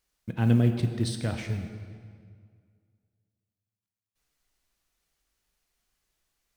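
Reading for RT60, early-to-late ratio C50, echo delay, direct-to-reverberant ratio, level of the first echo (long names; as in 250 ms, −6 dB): 2.0 s, 7.5 dB, no echo audible, 6.0 dB, no echo audible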